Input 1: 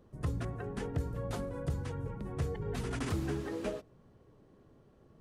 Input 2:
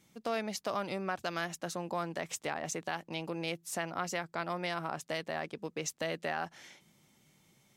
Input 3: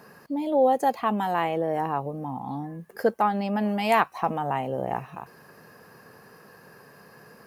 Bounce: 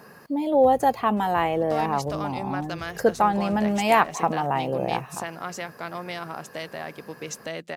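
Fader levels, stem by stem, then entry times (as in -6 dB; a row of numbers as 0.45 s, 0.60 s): -10.0 dB, +2.0 dB, +2.5 dB; 0.40 s, 1.45 s, 0.00 s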